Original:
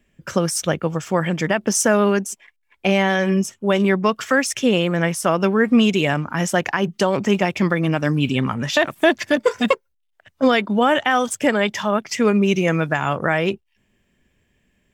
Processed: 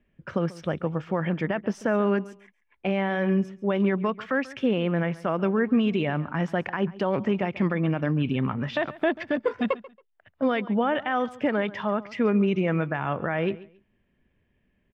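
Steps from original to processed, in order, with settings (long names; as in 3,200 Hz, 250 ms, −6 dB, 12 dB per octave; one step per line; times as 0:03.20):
brickwall limiter −9 dBFS, peak gain reduction 3.5 dB
high-frequency loss of the air 380 metres
on a send: repeating echo 138 ms, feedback 22%, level −19 dB
on the sum: level −4 dB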